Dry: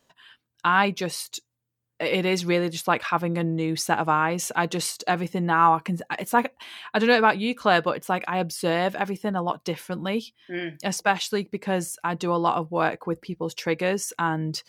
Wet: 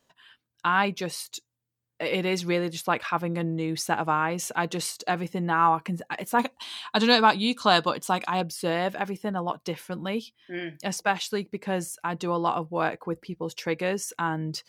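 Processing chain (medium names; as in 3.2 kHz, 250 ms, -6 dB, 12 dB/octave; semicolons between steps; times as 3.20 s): 6.39–8.41 s: ten-band graphic EQ 250 Hz +4 dB, 500 Hz -3 dB, 1 kHz +6 dB, 2 kHz -5 dB, 4 kHz +10 dB, 8 kHz +9 dB; trim -3 dB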